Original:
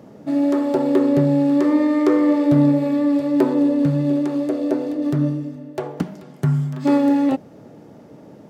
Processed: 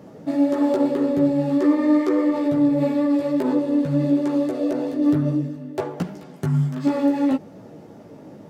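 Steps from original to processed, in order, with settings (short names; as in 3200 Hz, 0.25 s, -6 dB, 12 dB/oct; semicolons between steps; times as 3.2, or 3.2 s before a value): limiter -14.5 dBFS, peak gain reduction 9 dB; chorus voices 4, 0.71 Hz, delay 15 ms, depth 4.8 ms; gain +4 dB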